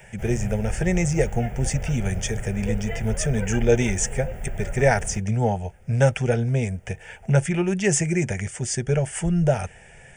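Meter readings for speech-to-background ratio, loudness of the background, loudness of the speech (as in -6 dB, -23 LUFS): 9.5 dB, -33.5 LUFS, -24.0 LUFS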